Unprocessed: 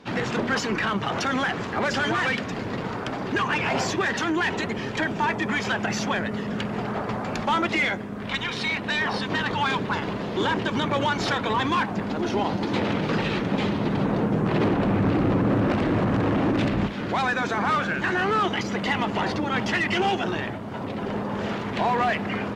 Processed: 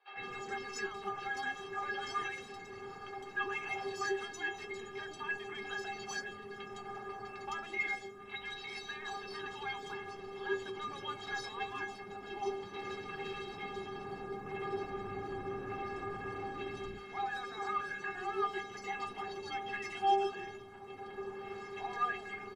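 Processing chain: peaking EQ 330 Hz -10 dB 0.21 oct; inharmonic resonator 390 Hz, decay 0.25 s, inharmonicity 0.008; three bands offset in time mids, lows, highs 110/160 ms, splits 560/3700 Hz; trim +2 dB

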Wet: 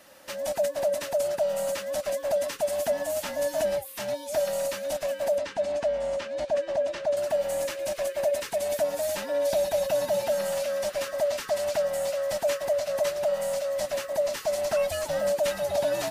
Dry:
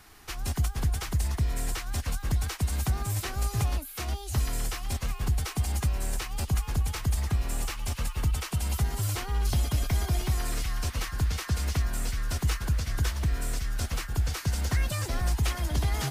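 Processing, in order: split-band scrambler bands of 500 Hz; 5.38–7.17 s: distance through air 120 m

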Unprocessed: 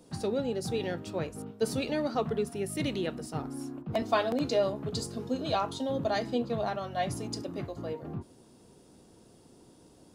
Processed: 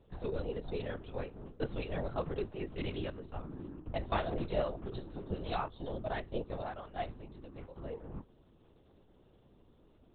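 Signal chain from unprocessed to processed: LPC vocoder at 8 kHz whisper; 5.68–7.76 s: upward expansion 1.5:1, over -39 dBFS; trim -6 dB

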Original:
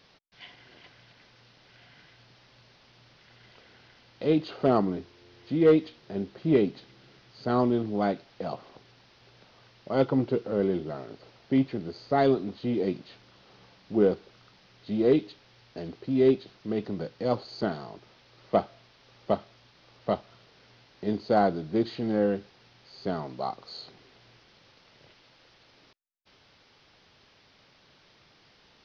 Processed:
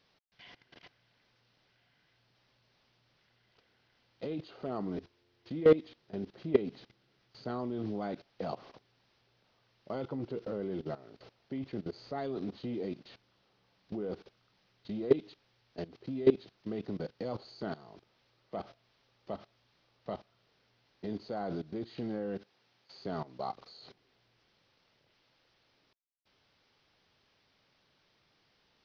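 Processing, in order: 22.38–23.04 s: high-pass 220 Hz 6 dB/octave; level held to a coarse grid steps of 18 dB

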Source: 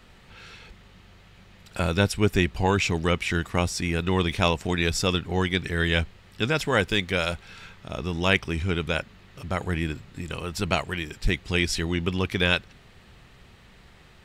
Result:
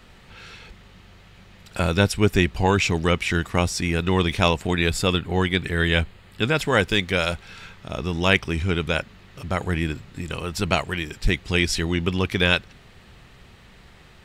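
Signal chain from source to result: 4.60–6.62 s: peaking EQ 5.7 kHz -11.5 dB 0.26 oct; trim +3 dB

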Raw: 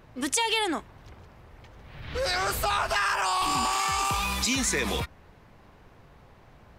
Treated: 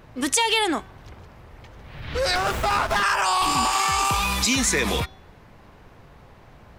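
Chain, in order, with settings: de-hum 381.3 Hz, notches 17; 2.35–3.03 s: sliding maximum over 9 samples; trim +5 dB

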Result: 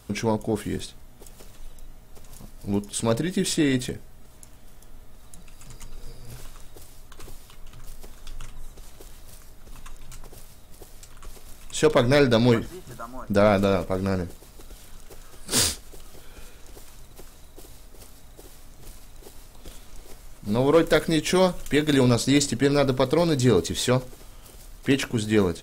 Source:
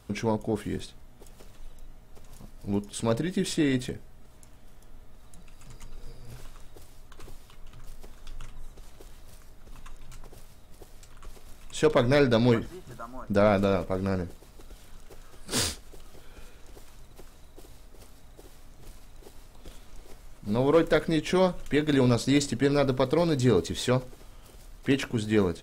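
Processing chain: treble shelf 5.1 kHz +6.5 dB, from 20.88 s +11.5 dB, from 22.03 s +6.5 dB; trim +3 dB

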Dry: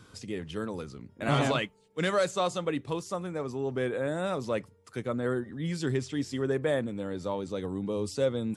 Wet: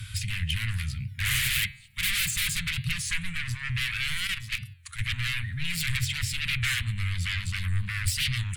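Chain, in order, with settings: in parallel at -6 dB: sine folder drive 20 dB, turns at -14.5 dBFS; 4.27–4.99 s: on the sum: level held to a coarse grid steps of 11 dB; elliptic band-stop 110–2100 Hz, stop band 80 dB; peaking EQ 5.9 kHz -12.5 dB 0.9 oct; de-hum 135 Hz, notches 33; warped record 33 1/3 rpm, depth 160 cents; trim +3 dB

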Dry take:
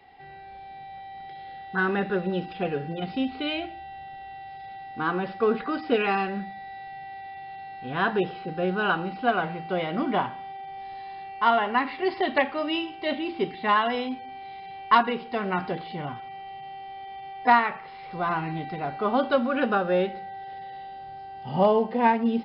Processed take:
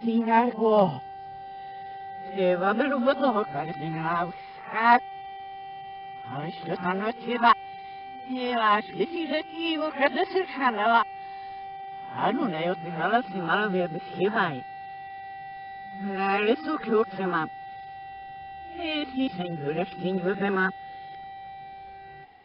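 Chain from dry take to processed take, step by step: reverse the whole clip

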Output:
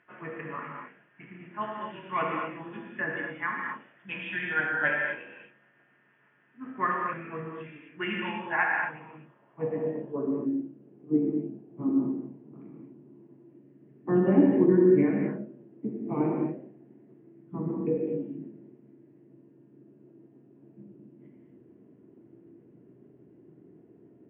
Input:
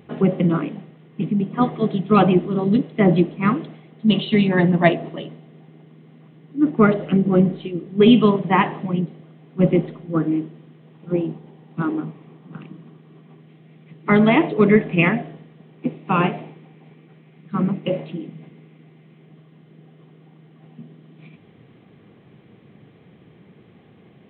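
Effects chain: rotating-head pitch shifter -2.5 st; gated-style reverb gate 280 ms flat, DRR -1.5 dB; band-pass sweep 1.6 kHz -> 330 Hz, 8.95–10.70 s; trim -1.5 dB

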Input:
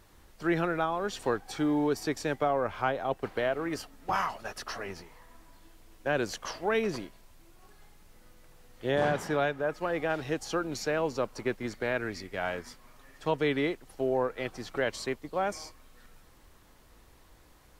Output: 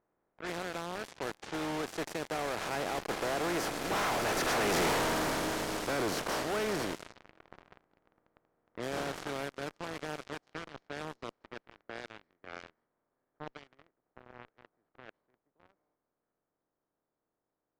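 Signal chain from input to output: spectral levelling over time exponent 0.4; Doppler pass-by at 4.85 s, 15 m/s, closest 1 m; in parallel at -9 dB: fuzz box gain 61 dB, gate -59 dBFS; on the sum: level-controlled noise filter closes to 1.4 kHz, open at -27 dBFS; trim -7.5 dB

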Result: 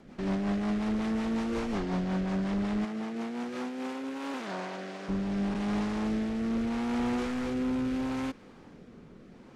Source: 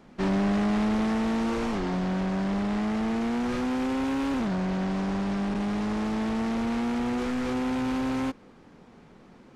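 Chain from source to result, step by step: 2.84–5.08 s: high-pass 170 Hz -> 540 Hz 12 dB/octave; peak limiter -28 dBFS, peak gain reduction 8 dB; rotary cabinet horn 5.5 Hz, later 0.75 Hz, at 3.38 s; trim +2.5 dB

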